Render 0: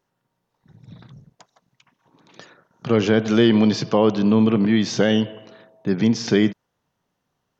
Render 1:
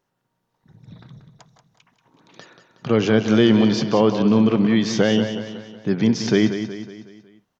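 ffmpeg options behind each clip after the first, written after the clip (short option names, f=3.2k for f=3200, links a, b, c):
-af "aecho=1:1:184|368|552|736|920:0.335|0.161|0.0772|0.037|0.0178"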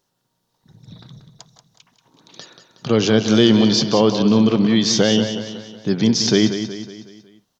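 -af "highshelf=f=3k:t=q:w=1.5:g=7.5,volume=1.5dB"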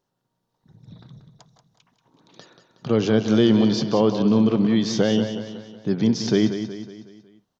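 -af "highshelf=f=2.3k:g=-10,volume=-3dB"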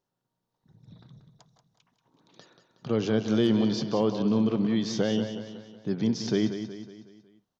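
-af "asoftclip=type=hard:threshold=-7.5dB,volume=-6.5dB"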